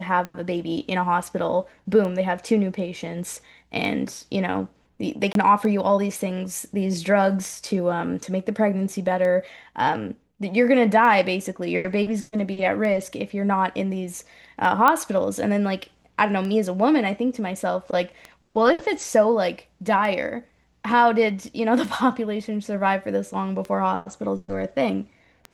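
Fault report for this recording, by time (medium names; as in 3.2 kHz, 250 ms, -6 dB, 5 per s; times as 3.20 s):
tick 33 1/3 rpm -19 dBFS
5.33–5.35 s: dropout 22 ms
14.88 s: pop -5 dBFS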